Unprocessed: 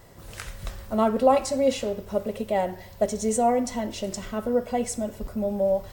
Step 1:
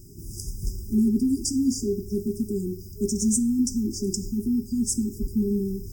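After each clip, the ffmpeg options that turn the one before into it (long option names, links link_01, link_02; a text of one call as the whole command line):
ffmpeg -i in.wav -af "afftfilt=real='re*(1-between(b*sr/4096,410,4800))':imag='im*(1-between(b*sr/4096,410,4800))':win_size=4096:overlap=0.75,volume=6dB" out.wav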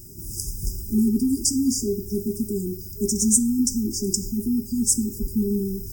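ffmpeg -i in.wav -af "highshelf=frequency=6500:gain=10.5,volume=1dB" out.wav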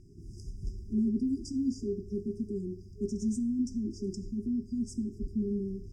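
ffmpeg -i in.wav -af "lowpass=frequency=2400:width_type=q:width=2.2,volume=-8.5dB" out.wav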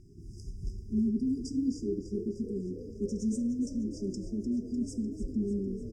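ffmpeg -i in.wav -filter_complex "[0:a]asplit=9[link_01][link_02][link_03][link_04][link_05][link_06][link_07][link_08][link_09];[link_02]adelay=300,afreqshift=34,volume=-11.5dB[link_10];[link_03]adelay=600,afreqshift=68,volume=-15.5dB[link_11];[link_04]adelay=900,afreqshift=102,volume=-19.5dB[link_12];[link_05]adelay=1200,afreqshift=136,volume=-23.5dB[link_13];[link_06]adelay=1500,afreqshift=170,volume=-27.6dB[link_14];[link_07]adelay=1800,afreqshift=204,volume=-31.6dB[link_15];[link_08]adelay=2100,afreqshift=238,volume=-35.6dB[link_16];[link_09]adelay=2400,afreqshift=272,volume=-39.6dB[link_17];[link_01][link_10][link_11][link_12][link_13][link_14][link_15][link_16][link_17]amix=inputs=9:normalize=0" out.wav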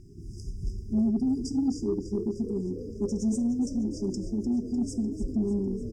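ffmpeg -i in.wav -af "asoftclip=type=tanh:threshold=-22.5dB,volume=5dB" out.wav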